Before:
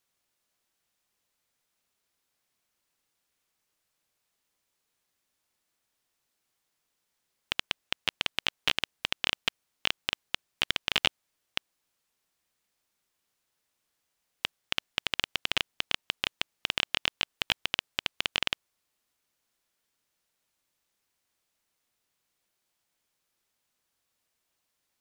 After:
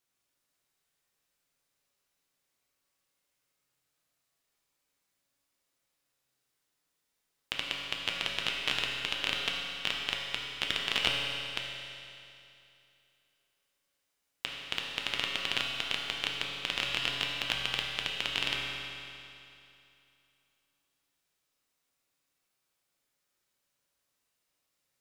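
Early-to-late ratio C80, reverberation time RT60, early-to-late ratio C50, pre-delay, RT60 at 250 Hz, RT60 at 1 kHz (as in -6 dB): 1.5 dB, 2.7 s, 0.5 dB, 7 ms, 2.7 s, 2.7 s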